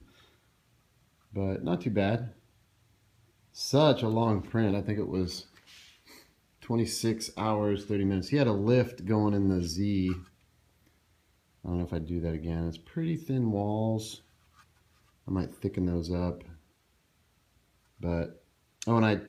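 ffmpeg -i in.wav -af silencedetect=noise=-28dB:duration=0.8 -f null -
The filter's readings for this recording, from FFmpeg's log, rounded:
silence_start: 0.00
silence_end: 1.36 | silence_duration: 1.36
silence_start: 2.20
silence_end: 3.61 | silence_duration: 1.41
silence_start: 5.33
silence_end: 6.70 | silence_duration: 1.37
silence_start: 10.13
silence_end: 11.66 | silence_duration: 1.53
silence_start: 13.99
silence_end: 15.28 | silence_duration: 1.29
silence_start: 16.32
silence_end: 18.04 | silence_duration: 1.72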